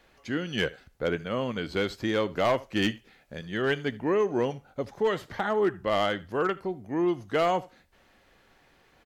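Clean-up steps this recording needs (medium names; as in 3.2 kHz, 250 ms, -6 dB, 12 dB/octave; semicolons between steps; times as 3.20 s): clip repair -18 dBFS; inverse comb 77 ms -21.5 dB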